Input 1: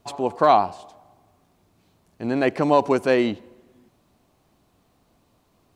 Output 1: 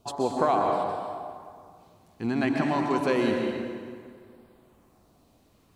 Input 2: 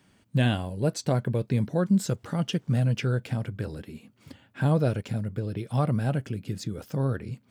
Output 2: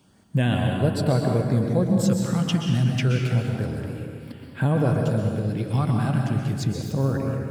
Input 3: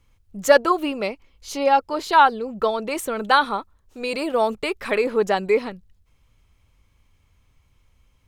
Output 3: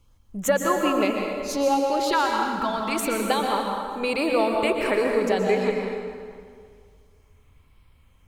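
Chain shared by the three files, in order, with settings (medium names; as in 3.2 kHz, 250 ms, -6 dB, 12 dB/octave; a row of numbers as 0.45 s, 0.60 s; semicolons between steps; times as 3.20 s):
compression 4:1, threshold -21 dBFS; LFO notch sine 0.29 Hz 460–6600 Hz; plate-style reverb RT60 2.1 s, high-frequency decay 0.7×, pre-delay 110 ms, DRR 1 dB; peak normalisation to -9 dBFS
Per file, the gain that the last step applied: -0.5 dB, +4.0 dB, +1.5 dB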